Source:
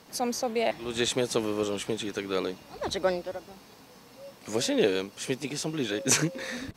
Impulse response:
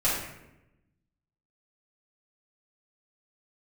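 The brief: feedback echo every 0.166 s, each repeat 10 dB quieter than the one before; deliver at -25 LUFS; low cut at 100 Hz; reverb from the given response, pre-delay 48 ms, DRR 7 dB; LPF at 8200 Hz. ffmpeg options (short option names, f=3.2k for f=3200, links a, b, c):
-filter_complex "[0:a]highpass=100,lowpass=8.2k,aecho=1:1:166|332|498|664:0.316|0.101|0.0324|0.0104,asplit=2[a][b];[1:a]atrim=start_sample=2205,adelay=48[c];[b][c]afir=irnorm=-1:irlink=0,volume=-19dB[d];[a][d]amix=inputs=2:normalize=0,volume=3.5dB"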